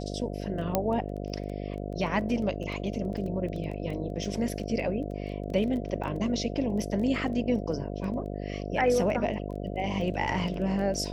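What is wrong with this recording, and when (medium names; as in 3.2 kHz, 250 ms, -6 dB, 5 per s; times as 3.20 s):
buzz 50 Hz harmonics 14 -35 dBFS
crackle 10 per s -35 dBFS
0.75 s: pop -10 dBFS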